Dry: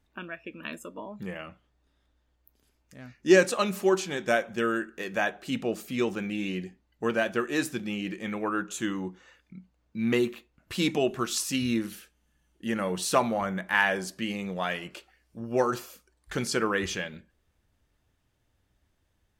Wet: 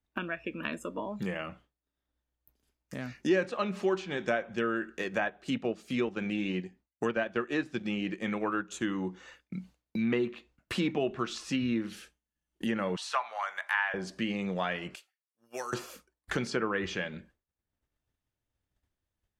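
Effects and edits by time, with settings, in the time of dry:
0:04.90–0:08.84: transient designer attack 0 dB, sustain −8 dB
0:12.96–0:13.94: high-pass filter 840 Hz 24 dB per octave
0:14.95–0:15.73: first difference
whole clip: treble cut that deepens with the level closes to 2,600 Hz, closed at −23.5 dBFS; downward expander −52 dBFS; multiband upward and downward compressor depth 70%; level −2.5 dB

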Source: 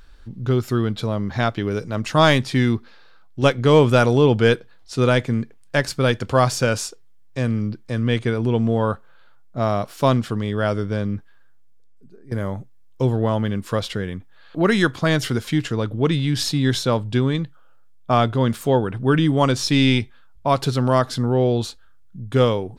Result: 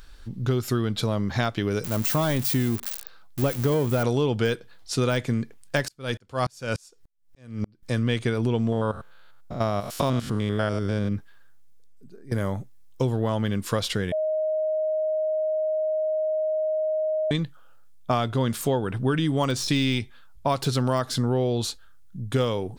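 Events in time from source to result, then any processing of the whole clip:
0:01.84–0:04.03: spike at every zero crossing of −10 dBFS
0:05.88–0:07.83: tremolo with a ramp in dB swelling 3.4 Hz, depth 39 dB
0:08.72–0:11.12: spectrum averaged block by block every 100 ms
0:14.12–0:17.31: beep over 624 Hz −22 dBFS
whole clip: de-essing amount 60%; high-shelf EQ 4,000 Hz +8 dB; downward compressor, threshold −20 dBFS

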